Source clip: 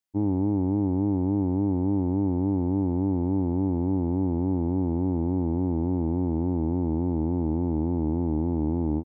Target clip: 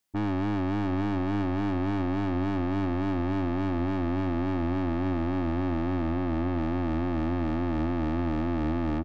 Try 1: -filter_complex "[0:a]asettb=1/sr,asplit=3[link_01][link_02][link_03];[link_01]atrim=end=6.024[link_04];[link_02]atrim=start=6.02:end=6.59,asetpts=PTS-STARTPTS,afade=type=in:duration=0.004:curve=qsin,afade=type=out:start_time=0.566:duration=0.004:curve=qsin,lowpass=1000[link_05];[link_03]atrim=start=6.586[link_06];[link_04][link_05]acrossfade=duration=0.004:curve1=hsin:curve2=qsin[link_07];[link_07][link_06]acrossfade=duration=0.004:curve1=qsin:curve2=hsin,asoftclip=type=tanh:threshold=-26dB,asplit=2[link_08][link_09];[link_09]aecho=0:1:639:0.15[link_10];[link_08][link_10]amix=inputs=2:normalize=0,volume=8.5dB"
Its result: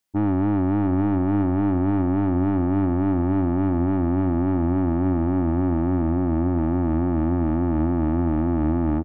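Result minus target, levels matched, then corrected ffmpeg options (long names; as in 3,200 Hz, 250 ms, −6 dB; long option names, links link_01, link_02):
soft clipping: distortion −4 dB
-filter_complex "[0:a]asettb=1/sr,asplit=3[link_01][link_02][link_03];[link_01]atrim=end=6.024[link_04];[link_02]atrim=start=6.02:end=6.59,asetpts=PTS-STARTPTS,afade=type=in:duration=0.004:curve=qsin,afade=type=out:start_time=0.566:duration=0.004:curve=qsin,lowpass=1000[link_05];[link_03]atrim=start=6.586[link_06];[link_04][link_05]acrossfade=duration=0.004:curve1=hsin:curve2=qsin[link_07];[link_07][link_06]acrossfade=duration=0.004:curve1=qsin:curve2=hsin,asoftclip=type=tanh:threshold=-35dB,asplit=2[link_08][link_09];[link_09]aecho=0:1:639:0.15[link_10];[link_08][link_10]amix=inputs=2:normalize=0,volume=8.5dB"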